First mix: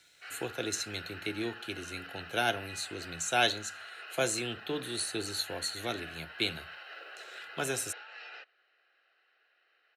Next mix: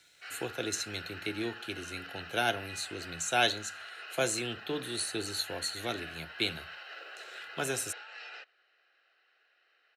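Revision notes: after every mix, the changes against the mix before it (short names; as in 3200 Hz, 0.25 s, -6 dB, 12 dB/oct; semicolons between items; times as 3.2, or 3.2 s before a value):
background: remove air absorption 87 m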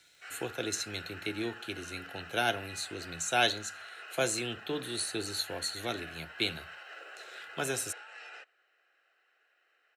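background: remove synth low-pass 4500 Hz, resonance Q 2.4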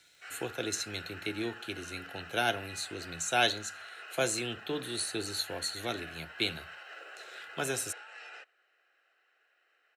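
none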